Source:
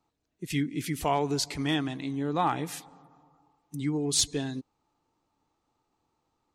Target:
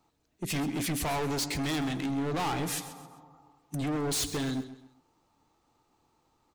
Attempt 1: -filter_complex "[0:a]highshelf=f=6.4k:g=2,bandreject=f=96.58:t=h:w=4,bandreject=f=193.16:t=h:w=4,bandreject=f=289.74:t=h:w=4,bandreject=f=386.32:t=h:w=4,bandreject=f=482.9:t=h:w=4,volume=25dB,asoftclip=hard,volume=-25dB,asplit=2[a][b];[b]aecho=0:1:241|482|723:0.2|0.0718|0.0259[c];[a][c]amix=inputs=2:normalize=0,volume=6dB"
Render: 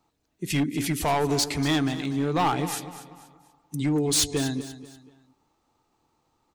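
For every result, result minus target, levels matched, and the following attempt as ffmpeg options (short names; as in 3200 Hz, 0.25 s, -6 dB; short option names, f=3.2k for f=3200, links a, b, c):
echo 0.11 s late; overloaded stage: distortion -7 dB
-filter_complex "[0:a]highshelf=f=6.4k:g=2,bandreject=f=96.58:t=h:w=4,bandreject=f=193.16:t=h:w=4,bandreject=f=289.74:t=h:w=4,bandreject=f=386.32:t=h:w=4,bandreject=f=482.9:t=h:w=4,volume=25dB,asoftclip=hard,volume=-25dB,asplit=2[a][b];[b]aecho=0:1:131|262|393:0.2|0.0718|0.0259[c];[a][c]amix=inputs=2:normalize=0,volume=6dB"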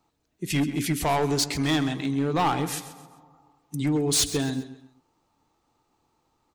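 overloaded stage: distortion -7 dB
-filter_complex "[0:a]highshelf=f=6.4k:g=2,bandreject=f=96.58:t=h:w=4,bandreject=f=193.16:t=h:w=4,bandreject=f=289.74:t=h:w=4,bandreject=f=386.32:t=h:w=4,bandreject=f=482.9:t=h:w=4,volume=35dB,asoftclip=hard,volume=-35dB,asplit=2[a][b];[b]aecho=0:1:131|262|393:0.2|0.0718|0.0259[c];[a][c]amix=inputs=2:normalize=0,volume=6dB"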